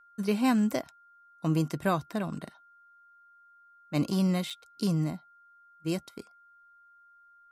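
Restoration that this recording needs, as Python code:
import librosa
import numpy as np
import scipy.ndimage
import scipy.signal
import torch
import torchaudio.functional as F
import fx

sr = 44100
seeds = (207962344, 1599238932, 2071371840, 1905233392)

y = fx.notch(x, sr, hz=1400.0, q=30.0)
y = fx.fix_interpolate(y, sr, at_s=(4.5,), length_ms=5.5)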